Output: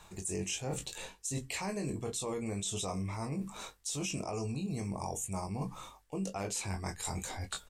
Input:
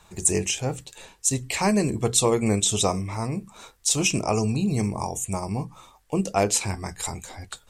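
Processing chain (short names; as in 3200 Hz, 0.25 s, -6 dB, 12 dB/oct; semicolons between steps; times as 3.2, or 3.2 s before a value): early reflections 21 ms -6 dB, 36 ms -15 dB; limiter -15 dBFS, peak gain reduction 9.5 dB; reverse; compressor 5:1, threshold -35 dBFS, peak gain reduction 14 dB; reverse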